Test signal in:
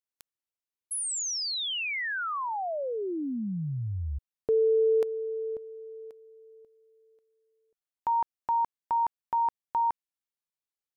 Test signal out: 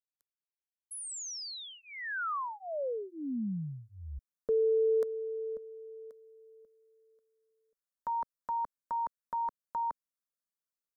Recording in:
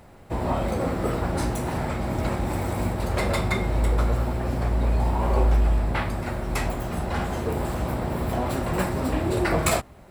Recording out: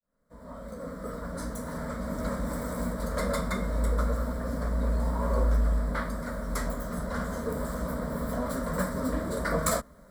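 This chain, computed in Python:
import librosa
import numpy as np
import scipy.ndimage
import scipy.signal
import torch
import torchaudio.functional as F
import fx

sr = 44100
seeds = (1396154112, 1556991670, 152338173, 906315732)

y = fx.fade_in_head(x, sr, length_s=2.37)
y = fx.fixed_phaser(y, sr, hz=530.0, stages=8)
y = y * 10.0 ** (-1.5 / 20.0)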